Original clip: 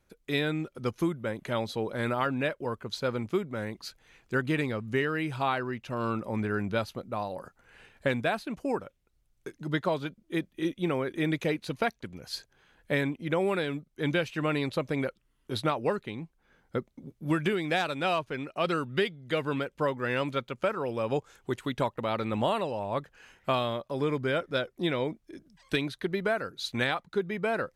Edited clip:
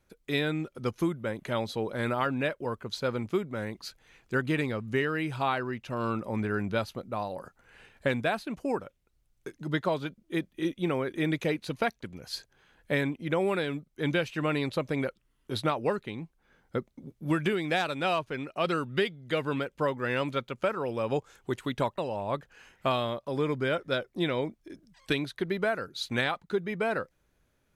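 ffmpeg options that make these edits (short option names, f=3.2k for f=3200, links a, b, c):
-filter_complex "[0:a]asplit=2[a][b];[a]atrim=end=21.982[c];[b]atrim=start=22.608[d];[c][d]acrossfade=d=0.004:c1=hsin:c2=hsin"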